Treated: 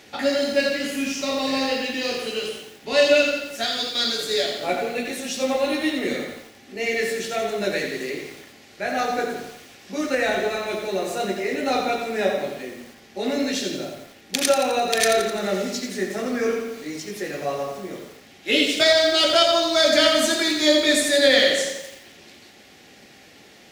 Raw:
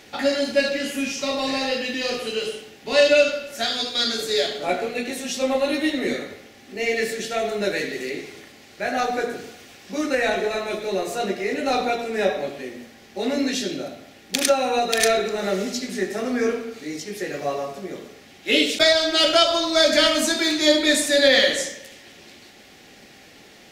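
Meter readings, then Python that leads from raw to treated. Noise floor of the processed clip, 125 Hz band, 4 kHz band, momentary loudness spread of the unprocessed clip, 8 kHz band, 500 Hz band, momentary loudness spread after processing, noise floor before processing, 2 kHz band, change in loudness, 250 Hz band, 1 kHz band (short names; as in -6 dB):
-49 dBFS, 0.0 dB, 0.0 dB, 16 LU, 0.0 dB, 0.0 dB, 16 LU, -48 dBFS, 0.0 dB, 0.0 dB, -0.5 dB, 0.0 dB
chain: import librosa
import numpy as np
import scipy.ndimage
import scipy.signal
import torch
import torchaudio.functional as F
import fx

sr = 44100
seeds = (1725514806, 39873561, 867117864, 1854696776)

y = scipy.signal.sosfilt(scipy.signal.butter(2, 44.0, 'highpass', fs=sr, output='sos'), x)
y = fx.echo_crushed(y, sr, ms=86, feedback_pct=55, bits=7, wet_db=-7.0)
y = y * 10.0 ** (-1.0 / 20.0)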